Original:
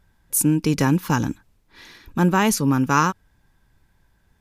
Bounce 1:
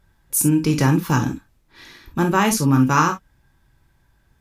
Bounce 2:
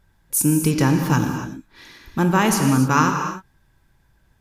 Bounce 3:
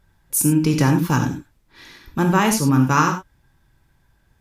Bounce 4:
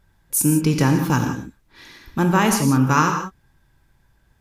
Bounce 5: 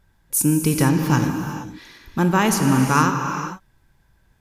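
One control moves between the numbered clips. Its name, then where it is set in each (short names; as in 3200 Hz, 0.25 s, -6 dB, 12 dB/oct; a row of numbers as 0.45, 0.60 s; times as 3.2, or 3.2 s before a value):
non-linear reverb, gate: 80, 310, 120, 200, 490 ms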